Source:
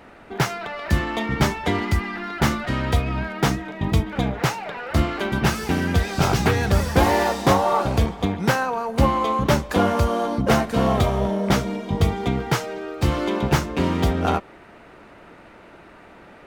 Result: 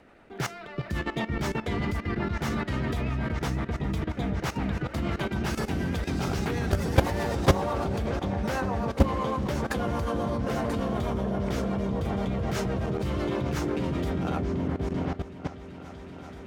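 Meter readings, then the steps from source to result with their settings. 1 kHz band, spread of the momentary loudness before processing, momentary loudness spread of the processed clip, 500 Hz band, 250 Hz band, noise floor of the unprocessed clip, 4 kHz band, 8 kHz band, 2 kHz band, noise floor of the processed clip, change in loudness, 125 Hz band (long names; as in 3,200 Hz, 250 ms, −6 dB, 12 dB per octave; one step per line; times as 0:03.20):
−9.5 dB, 6 LU, 8 LU, −6.5 dB, −5.5 dB, −47 dBFS, −9.5 dB, −9.5 dB, −8.5 dB, −43 dBFS, −7.0 dB, −6.0 dB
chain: rotating-speaker cabinet horn 8 Hz
echo whose low-pass opens from repeat to repeat 383 ms, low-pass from 400 Hz, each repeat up 1 octave, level −3 dB
output level in coarse steps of 14 dB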